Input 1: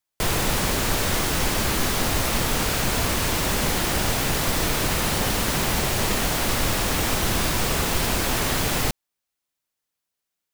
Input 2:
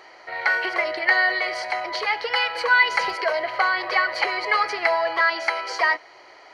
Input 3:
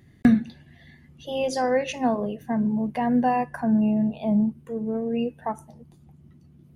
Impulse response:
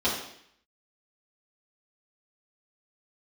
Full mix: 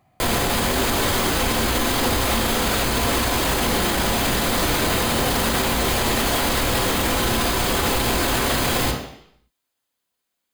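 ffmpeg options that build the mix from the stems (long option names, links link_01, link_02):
-filter_complex "[0:a]bandreject=frequency=5600:width=8.1,volume=2dB,asplit=2[link_01][link_02];[link_02]volume=-11.5dB[link_03];[1:a]asplit=3[link_04][link_05][link_06];[link_04]bandpass=frequency=730:width_type=q:width=8,volume=0dB[link_07];[link_05]bandpass=frequency=1090:width_type=q:width=8,volume=-6dB[link_08];[link_06]bandpass=frequency=2440:width_type=q:width=8,volume=-9dB[link_09];[link_07][link_08][link_09]amix=inputs=3:normalize=0,volume=-8.5dB[link_10];[2:a]volume=-10.5dB[link_11];[3:a]atrim=start_sample=2205[link_12];[link_03][link_12]afir=irnorm=-1:irlink=0[link_13];[link_01][link_10][link_11][link_13]amix=inputs=4:normalize=0,alimiter=limit=-11.5dB:level=0:latency=1:release=17"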